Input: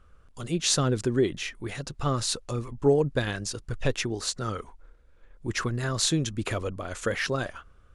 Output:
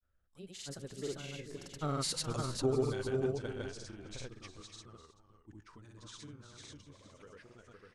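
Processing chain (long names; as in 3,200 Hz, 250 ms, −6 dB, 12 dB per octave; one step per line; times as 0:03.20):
source passing by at 0:02.24, 35 m/s, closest 13 metres
multi-tap delay 57/334/378/501/785/888 ms −19/−11.5/−14/−3/−16/−14 dB
granular cloud, pitch spread up and down by 0 semitones
level −5.5 dB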